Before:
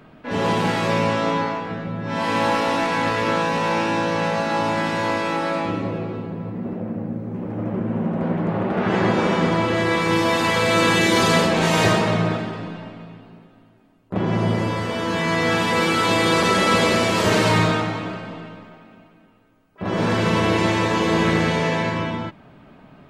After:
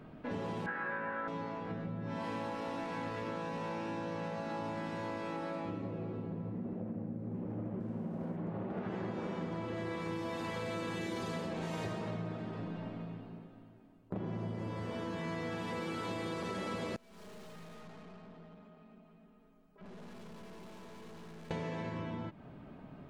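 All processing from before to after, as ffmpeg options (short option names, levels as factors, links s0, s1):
-filter_complex "[0:a]asettb=1/sr,asplit=3[s0][s1][s2];[s0]atrim=end=0.664[s3];[s1]atrim=start=0.66:end=1.28,asetpts=PTS-STARTPTS,afade=t=in:d=0.004:c=qsin,afade=t=out:st=0.616:d=0.004:c=qsin,lowpass=f=1600:t=q:w=10,lowshelf=f=410:g=-10,asplit=2[s4][s5];[s5]adelay=22,volume=0.708[s6];[s4][s6]amix=inputs=2:normalize=0,atrim=end_sample=27342[s7];[s2]atrim=start=1.276[s8];[s3][s7]acrossfade=d=0.004:c1=hsin:c2=qsin[s9];[s9][s8]acrossfade=d=0.004:c1=qsin:c2=hsin,asettb=1/sr,asplit=3[s10][s11][s12];[s10]atrim=end=7.804[s13];[s11]atrim=start=7.8:end=8.37,asetpts=PTS-STARTPTS,afade=t=in:d=0.004:c=qsin,afade=t=out:st=0.566:d=0.004:c=qsin,aeval=exprs='sgn(val(0))*max(abs(val(0))-0.00501,0)':c=same,highshelf=f=6900:g=5[s14];[s12]atrim=start=8.366[s15];[s13][s14]acrossfade=d=0.004:c1=hsin:c2=qsin[s16];[s16][s15]acrossfade=d=0.004:c1=qsin:c2=hsin,asettb=1/sr,asplit=3[s17][s18][s19];[s17]atrim=end=16.964[s20];[s18]atrim=start=16.96:end=21.51,asetpts=PTS-STARTPTS,afade=t=in:d=0.004:c=qsin,afade=t=out:st=4.546:d=0.004:c=qsin,aecho=1:1:4.8:0.83,atrim=end_sample=200655,aeval=exprs='(tanh(39.8*val(0)+0.55)-tanh(0.55))/39.8':c=same,acompressor=threshold=0.00178:ratio=2:attack=3.2:release=140:knee=1:detection=peak[s21];[s19]atrim=start=21.506[s22];[s20][s21]acrossfade=d=0.004:c1=hsin:c2=qsin[s23];[s23][s22]acrossfade=d=0.004:c1=qsin:c2=hsin,tiltshelf=f=880:g=4,acompressor=threshold=0.0316:ratio=6,volume=0.447"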